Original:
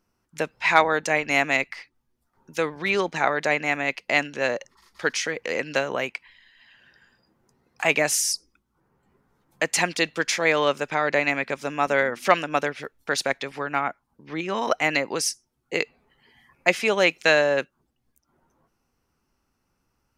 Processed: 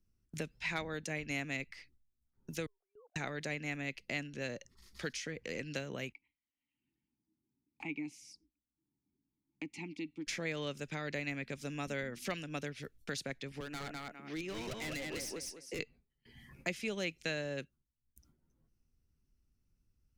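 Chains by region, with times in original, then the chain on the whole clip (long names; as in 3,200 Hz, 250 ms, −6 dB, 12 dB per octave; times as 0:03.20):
0:02.66–0:03.16: three sine waves on the formant tracks + flat-topped band-pass 660 Hz, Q 5.8 + comb filter 0.8 ms, depth 95%
0:06.12–0:10.27: formant filter u + low-shelf EQ 180 Hz +8 dB
0:13.60–0:15.79: high-pass filter 280 Hz + repeating echo 203 ms, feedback 19%, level −4 dB + gain into a clipping stage and back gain 25.5 dB
whole clip: noise gate with hold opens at −50 dBFS; guitar amp tone stack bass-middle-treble 10-0-1; multiband upward and downward compressor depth 70%; level +9 dB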